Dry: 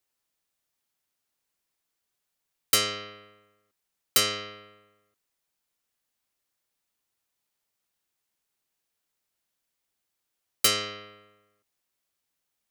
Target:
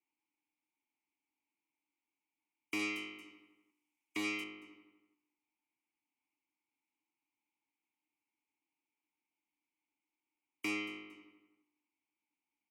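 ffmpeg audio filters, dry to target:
ffmpeg -i in.wav -filter_complex "[0:a]asplit=2[link_01][link_02];[link_02]aeval=exprs='0.0841*(abs(mod(val(0)/0.0841+3,4)-2)-1)':channel_layout=same,volume=-10dB[link_03];[link_01][link_03]amix=inputs=2:normalize=0,equalizer=frequency=62:width=0.81:gain=-3,asplit=3[link_04][link_05][link_06];[link_05]adelay=228,afreqshift=-58,volume=-22dB[link_07];[link_06]adelay=456,afreqshift=-116,volume=-31.9dB[link_08];[link_04][link_07][link_08]amix=inputs=3:normalize=0,aexciter=amount=1:drive=5.7:freq=2200,asettb=1/sr,asplit=3[link_09][link_10][link_11];[link_09]atrim=end=2.794[link_12];[link_10]atrim=start=2.79:end=4.44,asetpts=PTS-STARTPTS,afade=type=in:duration=0.004:curve=qsin,afade=type=out:start_time=1.646:duration=0.004:curve=qsin,highshelf=frequency=3000:gain=10[link_13];[link_11]atrim=start=4.436[link_14];[link_12][link_13]acrossfade=duration=0.004:curve1=hsin:curve2=qsin[link_15];[link_15][link_14]acrossfade=duration=0.004:curve1=qsin:curve2=hsin,afftfilt=real='re*lt(hypot(re,im),0.2)':imag='im*lt(hypot(re,im),0.2)':win_size=1024:overlap=0.75,asplit=3[link_16][link_17][link_18];[link_16]bandpass=frequency=300:width_type=q:width=8,volume=0dB[link_19];[link_17]bandpass=frequency=870:width_type=q:width=8,volume=-6dB[link_20];[link_18]bandpass=frequency=2240:width_type=q:width=8,volume=-9dB[link_21];[link_19][link_20][link_21]amix=inputs=3:normalize=0,volume=5.5dB" out.wav

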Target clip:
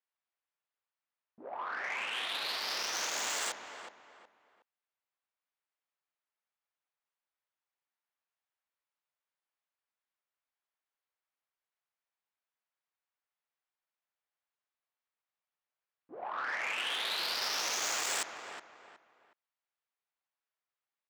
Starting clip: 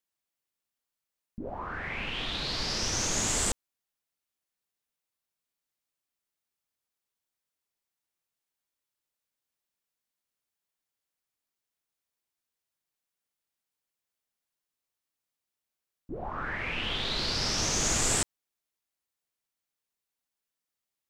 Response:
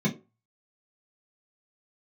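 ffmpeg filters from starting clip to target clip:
-filter_complex "[0:a]asplit=2[link_01][link_02];[link_02]adelay=367,lowpass=frequency=4000:poles=1,volume=-10dB,asplit=2[link_03][link_04];[link_04]adelay=367,lowpass=frequency=4000:poles=1,volume=0.31,asplit=2[link_05][link_06];[link_06]adelay=367,lowpass=frequency=4000:poles=1,volume=0.31[link_07];[link_03][link_05][link_07]amix=inputs=3:normalize=0[link_08];[link_01][link_08]amix=inputs=2:normalize=0,adynamicsmooth=sensitivity=4:basefreq=2500,asoftclip=type=tanh:threshold=-29dB,highpass=730,volume=2.5dB"

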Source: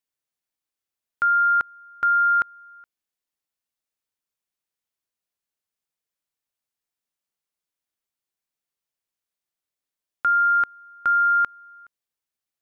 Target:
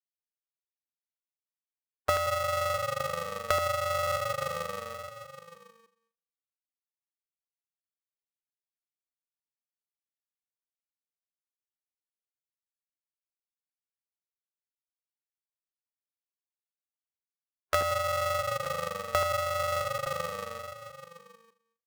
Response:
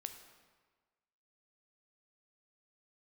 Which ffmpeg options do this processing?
-filter_complex "[0:a]aeval=exprs='val(0)+0.5*0.0211*sgn(val(0))':channel_layout=same,afftfilt=real='re*gte(hypot(re,im),0.0631)':imag='im*gte(hypot(re,im),0.0631)':win_size=1024:overlap=0.75,agate=range=-30dB:threshold=-32dB:ratio=16:detection=peak,afftdn=noise_reduction=31:noise_floor=-44,equalizer=frequency=77:width_type=o:width=0.35:gain=-9.5,asplit=2[link_01][link_02];[link_02]asplit=5[link_03][link_04][link_05][link_06][link_07];[link_03]adelay=88,afreqshift=-39,volume=-6dB[link_08];[link_04]adelay=176,afreqshift=-78,volume=-13.1dB[link_09];[link_05]adelay=264,afreqshift=-117,volume=-20.3dB[link_10];[link_06]adelay=352,afreqshift=-156,volume=-27.4dB[link_11];[link_07]adelay=440,afreqshift=-195,volume=-34.5dB[link_12];[link_08][link_09][link_10][link_11][link_12]amix=inputs=5:normalize=0[link_13];[link_01][link_13]amix=inputs=2:normalize=0,acompressor=threshold=-30dB:ratio=8,adynamicequalizer=threshold=0.00282:dfrequency=520:dqfactor=0.73:tfrequency=520:tqfactor=0.73:attack=5:release=100:ratio=0.375:range=1.5:mode=cutabove:tftype=bell,asetrate=50951,aresample=44100,atempo=0.865537,asplit=2[link_14][link_15];[link_15]aecho=0:1:46|528:0.501|0.224[link_16];[link_14][link_16]amix=inputs=2:normalize=0,asetrate=25442,aresample=44100,aeval=exprs='val(0)*sgn(sin(2*PI*340*n/s))':channel_layout=same,volume=4dB"

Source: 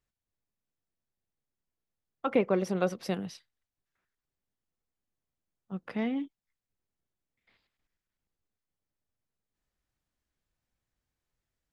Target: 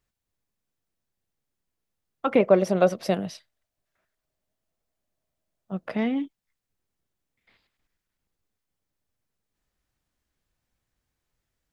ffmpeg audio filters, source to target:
ffmpeg -i in.wav -filter_complex "[0:a]asettb=1/sr,asplit=3[link_01][link_02][link_03];[link_01]atrim=end=2.404[link_04];[link_02]atrim=start=2.4:end=5.97,asetpts=PTS-STARTPTS,afade=type=in:duration=0.004:curve=qsin,afade=type=out:start_time=3.566:duration=0.004:curve=qsin,equalizer=frequency=630:width_type=o:width=0.28:gain=13[link_05];[link_03]atrim=start=5.966[link_06];[link_04][link_05]acrossfade=duration=0.004:curve1=hsin:curve2=qsin[link_07];[link_07][link_06]acrossfade=duration=0.004:curve1=qsin:curve2=hsin,volume=5.5dB" out.wav

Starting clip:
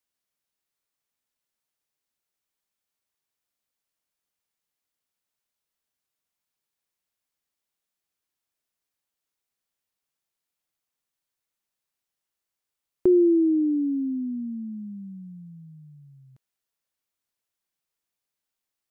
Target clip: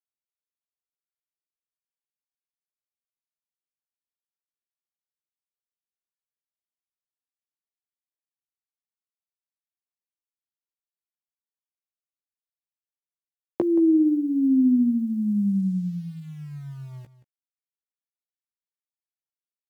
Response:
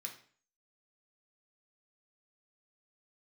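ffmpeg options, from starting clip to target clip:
-filter_complex "[0:a]highpass=160,lowshelf=frequency=220:gain=10.5,acrossover=split=220[link_01][link_02];[link_01]alimiter=level_in=8dB:limit=-24dB:level=0:latency=1,volume=-8dB[link_03];[link_02]acompressor=threshold=-31dB:ratio=10[link_04];[link_03][link_04]amix=inputs=2:normalize=0,aeval=exprs='val(0)*gte(abs(val(0)),0.00178)':channel_layout=same,asplit=2[link_05][link_06];[link_06]adelay=15,volume=-7dB[link_07];[link_05][link_07]amix=inputs=2:normalize=0,asplit=2[link_08][link_09];[link_09]aecho=0:1:169:0.178[link_10];[link_08][link_10]amix=inputs=2:normalize=0,asetrate=42336,aresample=44100,volume=7dB"

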